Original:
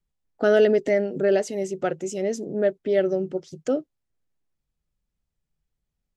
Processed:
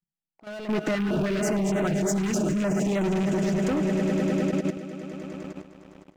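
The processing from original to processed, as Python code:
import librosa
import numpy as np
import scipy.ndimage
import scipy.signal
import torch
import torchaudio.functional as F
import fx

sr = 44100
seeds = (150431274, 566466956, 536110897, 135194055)

y = fx.rattle_buzz(x, sr, strikes_db=-29.0, level_db=-27.0)
y = fx.peak_eq(y, sr, hz=490.0, db=-13.5, octaves=0.3)
y = y + 0.49 * np.pad(y, (int(6.1 * sr / 1000.0), 0))[:len(y)]
y = 10.0 ** (-15.0 / 20.0) * np.tanh(y / 10.0 ** (-15.0 / 20.0))
y = fx.low_shelf_res(y, sr, hz=120.0, db=-11.5, q=3.0)
y = fx.echo_swell(y, sr, ms=102, loudest=5, wet_db=-14.0)
y = fx.leveller(y, sr, passes=3)
y = fx.auto_swell(y, sr, attack_ms=737.0)
y = fx.level_steps(y, sr, step_db=12)
y = fx.filter_held_notch(y, sr, hz=6.5, low_hz=610.0, high_hz=4900.0, at=(0.95, 3.04))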